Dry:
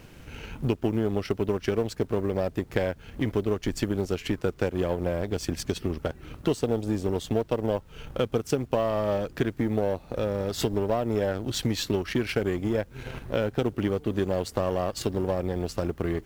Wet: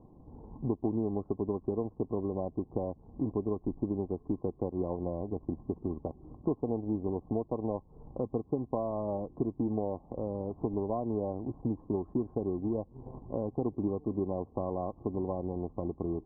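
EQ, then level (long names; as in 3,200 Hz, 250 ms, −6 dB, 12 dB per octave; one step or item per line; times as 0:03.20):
Chebyshev low-pass with heavy ripple 1,100 Hz, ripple 6 dB
−3.0 dB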